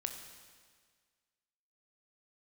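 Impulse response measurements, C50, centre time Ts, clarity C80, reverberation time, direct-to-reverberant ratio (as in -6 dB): 7.0 dB, 32 ms, 8.0 dB, 1.7 s, 5.0 dB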